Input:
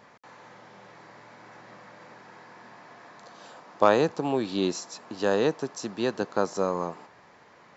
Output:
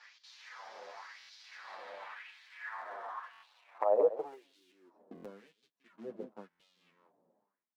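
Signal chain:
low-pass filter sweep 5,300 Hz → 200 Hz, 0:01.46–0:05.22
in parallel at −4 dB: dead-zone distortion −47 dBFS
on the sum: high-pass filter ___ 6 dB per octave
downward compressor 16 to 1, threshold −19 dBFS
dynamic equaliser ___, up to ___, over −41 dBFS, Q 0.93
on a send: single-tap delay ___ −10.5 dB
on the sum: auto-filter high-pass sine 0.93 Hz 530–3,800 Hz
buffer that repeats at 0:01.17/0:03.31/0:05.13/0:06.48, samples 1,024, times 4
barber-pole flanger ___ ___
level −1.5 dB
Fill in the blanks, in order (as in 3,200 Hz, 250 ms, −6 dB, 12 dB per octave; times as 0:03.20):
57 Hz, 680 Hz, −4 dB, 173 ms, 8.6 ms, −2.9 Hz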